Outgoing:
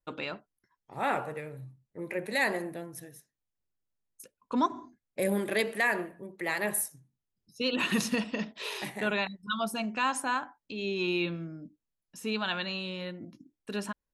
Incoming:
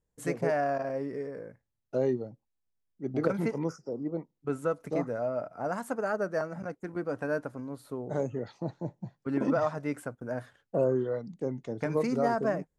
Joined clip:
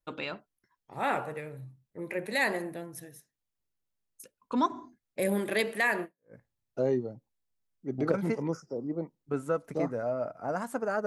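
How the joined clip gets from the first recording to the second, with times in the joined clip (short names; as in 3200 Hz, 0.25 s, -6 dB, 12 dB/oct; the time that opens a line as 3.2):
outgoing
6.19 switch to incoming from 1.35 s, crossfade 0.30 s exponential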